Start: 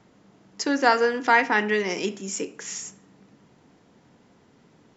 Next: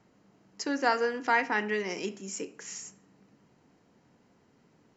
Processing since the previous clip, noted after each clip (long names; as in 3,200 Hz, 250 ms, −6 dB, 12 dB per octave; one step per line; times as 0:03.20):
notch filter 3,500 Hz, Q 8.6
level −7 dB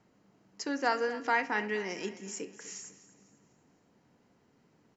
repeating echo 249 ms, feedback 40%, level −16 dB
level −3 dB